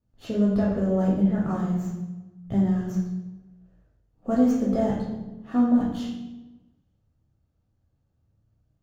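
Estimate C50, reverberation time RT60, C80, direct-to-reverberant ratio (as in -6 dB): 2.0 dB, 1.1 s, 5.0 dB, -4.5 dB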